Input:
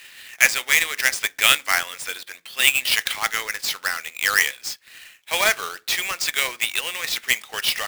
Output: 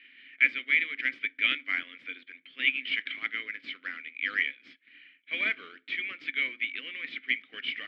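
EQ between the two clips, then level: vowel filter i; distance through air 400 m; peaking EQ 1.2 kHz +7.5 dB 2.5 oct; +3.0 dB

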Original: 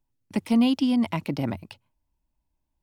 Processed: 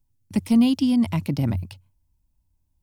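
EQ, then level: tone controls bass +11 dB, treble +5 dB; peaking EQ 91 Hz +9 dB 0.31 oct; treble shelf 5.3 kHz +5 dB; -3.0 dB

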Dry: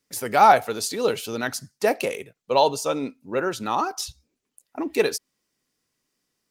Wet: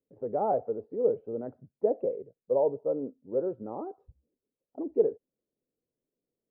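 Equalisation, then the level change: four-pole ladder low-pass 600 Hz, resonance 50%; 0.0 dB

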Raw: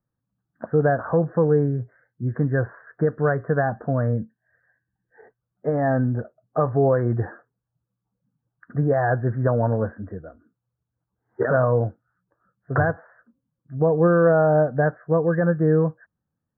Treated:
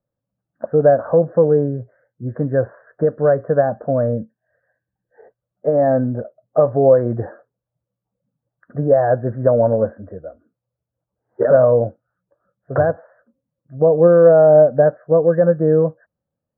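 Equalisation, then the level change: peaking EQ 570 Hz +15 dB 0.6 oct; dynamic bell 240 Hz, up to +5 dB, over -28 dBFS, Q 1.5; distance through air 350 m; -2.0 dB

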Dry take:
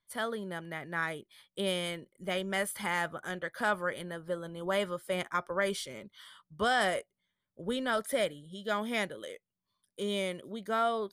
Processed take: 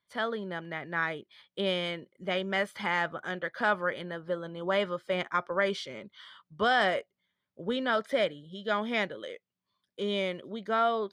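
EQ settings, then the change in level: high-pass 140 Hz 6 dB/octave; distance through air 210 m; treble shelf 3.9 kHz +8 dB; +3.5 dB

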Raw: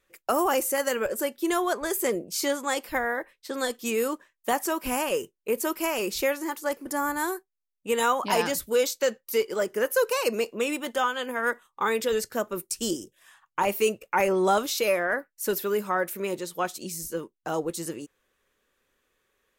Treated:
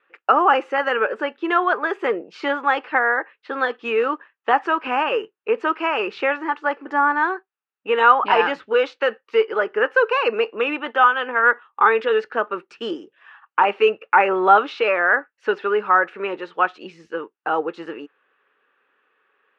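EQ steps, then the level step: cabinet simulation 240–3400 Hz, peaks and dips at 290 Hz +5 dB, 440 Hz +8 dB, 820 Hz +9 dB, 1.7 kHz +5 dB, 2.7 kHz +9 dB; peaking EQ 1.3 kHz +13.5 dB 0.79 oct; -1.5 dB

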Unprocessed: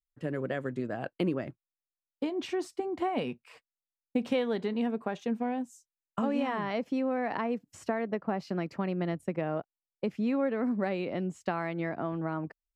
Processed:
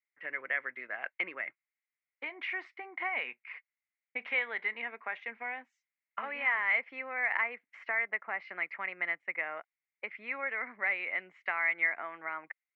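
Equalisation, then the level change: high-pass 1.1 kHz 12 dB/octave; resonant low-pass 2.1 kHz, resonance Q 10; distance through air 110 m; 0.0 dB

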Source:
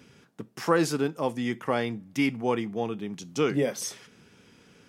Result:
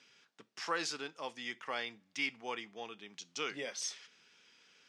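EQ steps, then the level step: band-pass filter 5.6 kHz, Q 0.79; distance through air 63 m; treble shelf 7.9 kHz -10 dB; +3.5 dB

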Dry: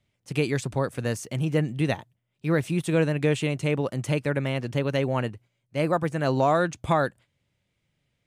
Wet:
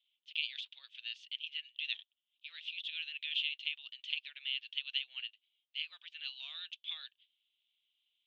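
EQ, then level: Butterworth band-pass 3.2 kHz, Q 3.6; distance through air 190 m; differentiator; +16.5 dB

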